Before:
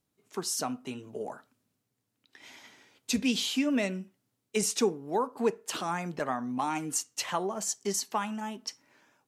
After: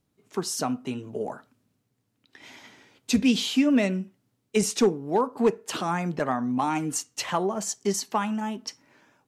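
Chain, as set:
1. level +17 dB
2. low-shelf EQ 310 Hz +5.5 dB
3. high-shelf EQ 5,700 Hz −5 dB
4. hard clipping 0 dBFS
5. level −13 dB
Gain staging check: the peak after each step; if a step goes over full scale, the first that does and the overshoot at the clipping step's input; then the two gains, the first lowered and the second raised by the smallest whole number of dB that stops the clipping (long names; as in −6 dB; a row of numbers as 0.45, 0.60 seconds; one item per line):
+2.0, +4.0, +4.0, 0.0, −13.0 dBFS
step 1, 4.0 dB
step 1 +13 dB, step 5 −9 dB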